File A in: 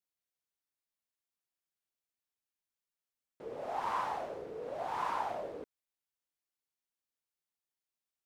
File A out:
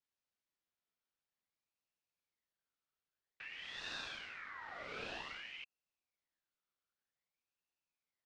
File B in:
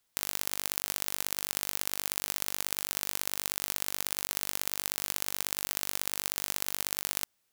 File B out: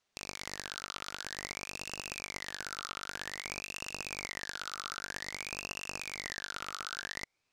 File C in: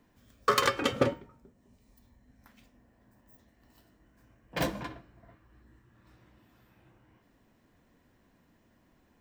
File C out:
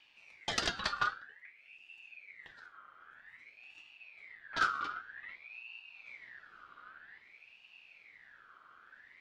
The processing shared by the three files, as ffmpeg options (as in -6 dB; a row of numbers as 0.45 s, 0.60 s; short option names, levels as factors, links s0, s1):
-filter_complex "[0:a]lowpass=3500,asubboost=boost=3:cutoff=200,acrossover=split=170|1900[s0][s1][s2];[s1]acompressor=threshold=0.00282:ratio=6[s3];[s0][s3][s2]amix=inputs=3:normalize=0,aeval=exprs='val(0)*sin(2*PI*2000*n/s+2000*0.35/0.52*sin(2*PI*0.52*n/s))':c=same,volume=1.68"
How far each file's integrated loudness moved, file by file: -8.0 LU, -8.5 LU, -7.5 LU